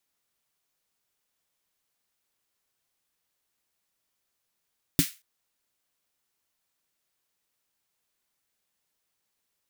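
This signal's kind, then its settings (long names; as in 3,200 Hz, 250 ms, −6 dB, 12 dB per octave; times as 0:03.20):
synth snare length 0.23 s, tones 170 Hz, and 280 Hz, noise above 1,700 Hz, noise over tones −6 dB, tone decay 0.08 s, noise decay 0.28 s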